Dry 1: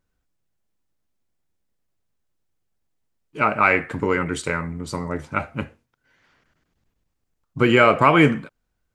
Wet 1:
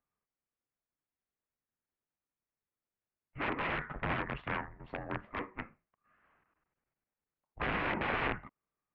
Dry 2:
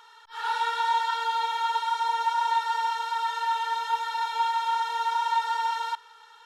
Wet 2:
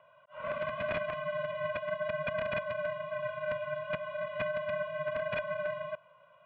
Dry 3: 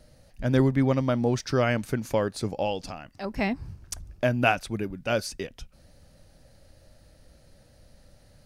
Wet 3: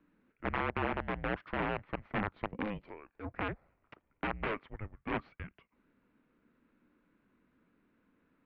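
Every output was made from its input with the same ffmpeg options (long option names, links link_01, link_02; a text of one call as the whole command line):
ffmpeg -i in.wav -af "aeval=exprs='0.891*(cos(1*acos(clip(val(0)/0.891,-1,1)))-cos(1*PI/2))+0.112*(cos(4*acos(clip(val(0)/0.891,-1,1)))-cos(4*PI/2))+0.158*(cos(8*acos(clip(val(0)/0.891,-1,1)))-cos(8*PI/2))':channel_layout=same,aeval=exprs='(mod(4.47*val(0)+1,2)-1)/4.47':channel_layout=same,highpass=frequency=350:width_type=q:width=0.5412,highpass=frequency=350:width_type=q:width=1.307,lowpass=frequency=2800:width_type=q:width=0.5176,lowpass=frequency=2800:width_type=q:width=0.7071,lowpass=frequency=2800:width_type=q:width=1.932,afreqshift=-310,volume=-8dB" out.wav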